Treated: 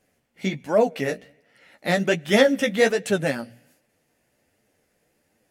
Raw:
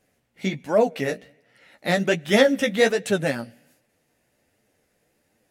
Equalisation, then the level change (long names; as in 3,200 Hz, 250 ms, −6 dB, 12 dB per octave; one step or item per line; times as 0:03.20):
mains-hum notches 60/120 Hz
notch filter 3,800 Hz, Q 26
0.0 dB